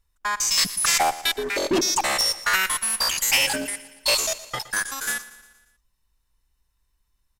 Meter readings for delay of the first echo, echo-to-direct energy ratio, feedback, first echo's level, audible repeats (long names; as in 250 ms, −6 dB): 117 ms, −15.5 dB, 54%, −17.0 dB, 4